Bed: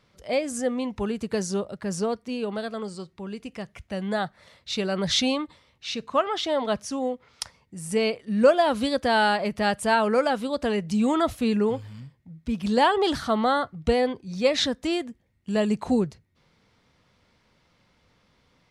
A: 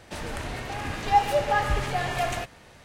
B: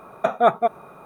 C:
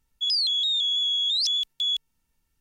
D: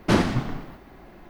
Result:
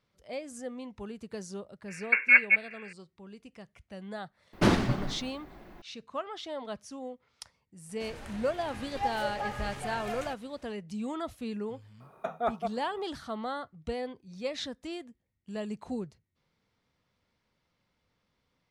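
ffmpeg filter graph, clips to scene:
-filter_complex "[2:a]asplit=2[a][b];[0:a]volume=-13dB[c];[a]lowpass=f=2.5k:t=q:w=0.5098,lowpass=f=2.5k:t=q:w=0.6013,lowpass=f=2.5k:t=q:w=0.9,lowpass=f=2.5k:t=q:w=2.563,afreqshift=-2900,atrim=end=1.05,asetpts=PTS-STARTPTS,volume=-3dB,afade=t=in:d=0.004:c=hsin,afade=t=out:st=1.046:d=0.004:c=hsin,adelay=1880[d];[4:a]atrim=end=1.29,asetpts=PTS-STARTPTS,volume=-3.5dB,afade=t=in:d=0.004:c=hsin,afade=t=out:st=1.286:d=0.004:c=hsin,adelay=199773S[e];[1:a]atrim=end=2.84,asetpts=PTS-STARTPTS,volume=-11.5dB,afade=t=in:d=0.004:c=hsin,afade=t=out:st=2.836:d=0.004:c=hsin,adelay=7890[f];[b]atrim=end=1.05,asetpts=PTS-STARTPTS,volume=-13.5dB,afade=t=in:d=0.004:c=hsin,afade=t=out:st=1.046:d=0.004:c=hsin,adelay=12000[g];[c][d][e][f][g]amix=inputs=5:normalize=0"

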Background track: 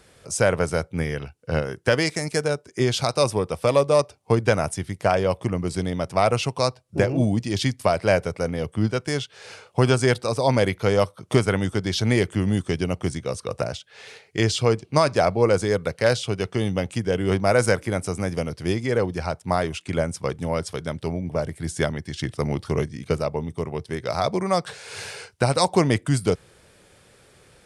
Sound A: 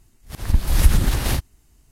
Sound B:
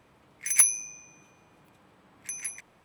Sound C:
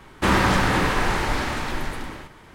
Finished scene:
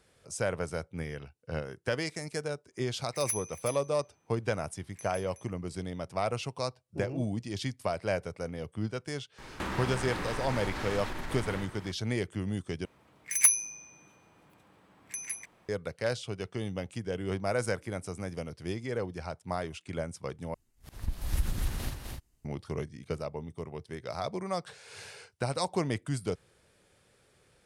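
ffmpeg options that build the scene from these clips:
-filter_complex "[2:a]asplit=2[a][b];[0:a]volume=-11.5dB[c];[a]aecho=1:1:371:0.422[d];[3:a]acompressor=threshold=-31dB:ratio=6:attack=3.2:release=140:knee=1:detection=peak[e];[1:a]aecho=1:1:256:0.631[f];[c]asplit=3[g][h][i];[g]atrim=end=12.854[j];[b]atrim=end=2.84,asetpts=PTS-STARTPTS,volume=-2dB[k];[h]atrim=start=15.686:end=20.544[l];[f]atrim=end=1.91,asetpts=PTS-STARTPTS,volume=-16dB[m];[i]atrim=start=22.446[n];[d]atrim=end=2.84,asetpts=PTS-STARTPTS,volume=-14dB,afade=t=in:d=0.1,afade=t=out:st=2.74:d=0.1,adelay=2700[o];[e]atrim=end=2.54,asetpts=PTS-STARTPTS,volume=-1.5dB,afade=t=in:d=0.004:c=hsin,afade=t=out:st=2.536:d=0.004:c=hsin,adelay=413658S[p];[j][k]acrossfade=d=0.004:c1=hsin:c2=hsin[q];[q][l]acrossfade=d=0.004:c1=hsin:c2=hsin[r];[r][m]acrossfade=d=0.004:c1=hsin:c2=hsin[s];[s][n]acrossfade=d=0.004:c1=hsin:c2=hsin[t];[t][o][p]amix=inputs=3:normalize=0"

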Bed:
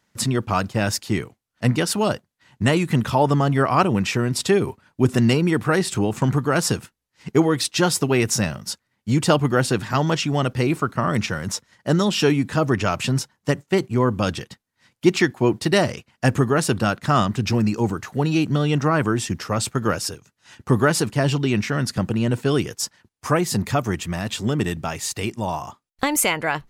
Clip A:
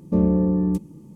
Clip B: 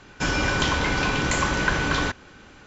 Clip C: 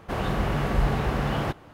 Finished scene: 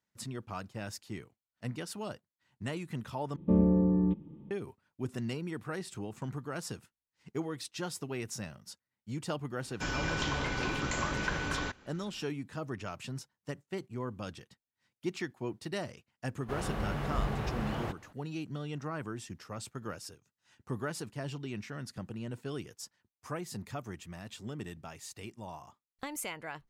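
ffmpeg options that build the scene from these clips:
-filter_complex "[0:a]volume=-19dB[a];[1:a]aresample=8000,aresample=44100[b];[a]asplit=2[c][d];[c]atrim=end=3.364[e];[b]atrim=end=1.15,asetpts=PTS-STARTPTS,volume=-6dB[f];[d]atrim=start=4.506[g];[2:a]atrim=end=2.66,asetpts=PTS-STARTPTS,volume=-11dB,afade=t=in:d=0.004:c=hsin,afade=t=out:st=2.656:d=0.004:c=hsin,adelay=9600[h];[3:a]atrim=end=1.73,asetpts=PTS-STARTPTS,volume=-9.5dB,afade=t=in:d=0.004:c=hsin,afade=t=out:st=1.726:d=0.004:c=hsin,adelay=16400[i];[e][f]acrossfade=d=0.004:c1=hsin:c2=hsin[j];[j][g]acrossfade=d=0.004:c1=hsin:c2=hsin[k];[k][h][i]amix=inputs=3:normalize=0"

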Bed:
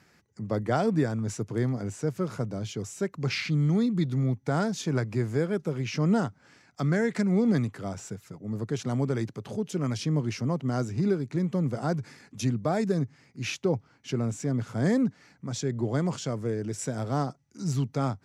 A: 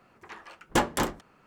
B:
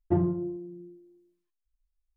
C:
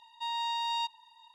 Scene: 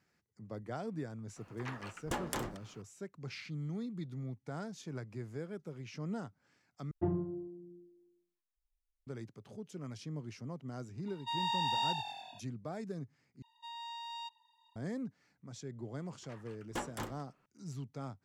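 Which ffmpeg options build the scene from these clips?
-filter_complex "[1:a]asplit=2[a][b];[3:a]asplit=2[c][d];[0:a]volume=-15.5dB[e];[a]acompressor=threshold=-33dB:ratio=6:attack=3.2:release=140:knee=1:detection=peak[f];[c]asplit=9[g][h][i][j][k][l][m][n][o];[h]adelay=98,afreqshift=-43,volume=-7.5dB[p];[i]adelay=196,afreqshift=-86,volume=-11.8dB[q];[j]adelay=294,afreqshift=-129,volume=-16.1dB[r];[k]adelay=392,afreqshift=-172,volume=-20.4dB[s];[l]adelay=490,afreqshift=-215,volume=-24.7dB[t];[m]adelay=588,afreqshift=-258,volume=-29dB[u];[n]adelay=686,afreqshift=-301,volume=-33.3dB[v];[o]adelay=784,afreqshift=-344,volume=-37.6dB[w];[g][p][q][r][s][t][u][v][w]amix=inputs=9:normalize=0[x];[b]alimiter=limit=-18dB:level=0:latency=1:release=89[y];[e]asplit=3[z][aa][ab];[z]atrim=end=6.914[ac];[2:a]atrim=end=2.16,asetpts=PTS-STARTPTS,volume=-8.5dB[ad];[aa]atrim=start=9.066:end=13.424[ae];[d]atrim=end=1.34,asetpts=PTS-STARTPTS,volume=-12dB[af];[ab]atrim=start=14.756[ag];[f]atrim=end=1.46,asetpts=PTS-STARTPTS,volume=-0.5dB,afade=t=in:d=0.004:c=hsin,afade=t=out:st=1.456:d=0.004:c=hsin,adelay=1360[ah];[x]atrim=end=1.34,asetpts=PTS-STARTPTS,volume=-2dB,afade=t=in:d=0.004:c=hsin,afade=t=out:st=1.336:d=0.004:c=hsin,adelay=487746S[ai];[y]atrim=end=1.46,asetpts=PTS-STARTPTS,volume=-12.5dB,afade=t=in:d=0.004:c=hsin,afade=t=out:st=1.456:d=0.004:c=hsin,adelay=16000[aj];[ac][ad]acrossfade=d=0.004:c1=hsin:c2=hsin[ak];[ak][ae]acrossfade=d=0.004:c1=hsin:c2=hsin[al];[al][af]acrossfade=d=0.004:c1=hsin:c2=hsin[am];[am][ag]acrossfade=d=0.004:c1=hsin:c2=hsin[an];[an][ah][ai][aj]amix=inputs=4:normalize=0"

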